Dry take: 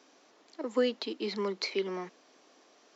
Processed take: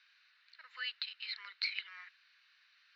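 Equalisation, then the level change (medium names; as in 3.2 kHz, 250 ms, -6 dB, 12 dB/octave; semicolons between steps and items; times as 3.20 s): elliptic band-pass 1.5–4.2 kHz, stop band 80 dB; band-stop 3.3 kHz, Q 8.8; +1.5 dB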